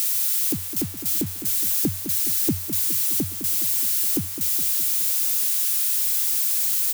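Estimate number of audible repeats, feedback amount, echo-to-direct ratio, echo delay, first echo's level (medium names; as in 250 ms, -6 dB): 6, 59%, -8.5 dB, 208 ms, -10.5 dB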